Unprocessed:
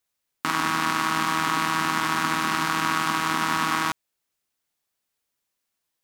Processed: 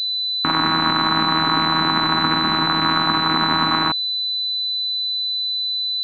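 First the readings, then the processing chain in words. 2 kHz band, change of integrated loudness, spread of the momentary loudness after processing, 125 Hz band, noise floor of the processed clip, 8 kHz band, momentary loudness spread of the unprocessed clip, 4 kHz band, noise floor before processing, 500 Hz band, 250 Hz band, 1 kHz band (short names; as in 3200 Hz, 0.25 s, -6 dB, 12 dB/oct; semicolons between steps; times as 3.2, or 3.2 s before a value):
+2.0 dB, +6.0 dB, 3 LU, +8.0 dB, -23 dBFS, under -15 dB, 3 LU, +15.5 dB, -81 dBFS, +7.0 dB, +7.5 dB, +4.5 dB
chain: Wiener smoothing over 25 samples; pulse-width modulation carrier 4000 Hz; gain +8.5 dB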